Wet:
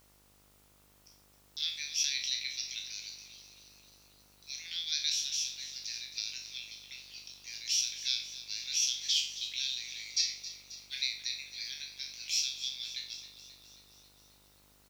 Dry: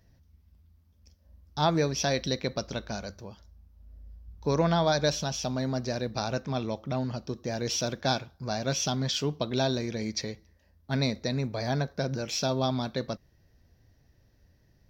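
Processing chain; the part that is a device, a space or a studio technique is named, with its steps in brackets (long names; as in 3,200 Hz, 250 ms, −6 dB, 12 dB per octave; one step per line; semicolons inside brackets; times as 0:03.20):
peak hold with a decay on every bin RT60 0.44 s
Butterworth high-pass 2,200 Hz 48 dB per octave
0:10.19–0:11.02: comb filter 5.4 ms, depth 93%
video cassette with head-switching buzz (hum with harmonics 50 Hz, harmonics 29, −68 dBFS −4 dB per octave; white noise bed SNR 28 dB)
echo with shifted repeats 268 ms, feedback 63%, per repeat +38 Hz, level −14 dB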